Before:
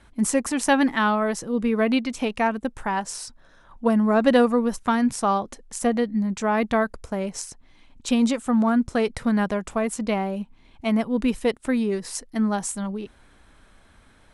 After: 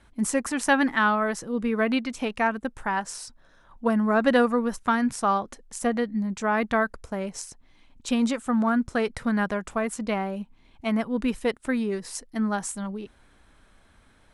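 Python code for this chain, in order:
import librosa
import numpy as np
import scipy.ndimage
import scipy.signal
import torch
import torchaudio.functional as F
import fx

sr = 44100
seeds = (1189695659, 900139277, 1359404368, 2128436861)

y = fx.dynamic_eq(x, sr, hz=1500.0, q=1.5, threshold_db=-40.0, ratio=4.0, max_db=6)
y = F.gain(torch.from_numpy(y), -3.5).numpy()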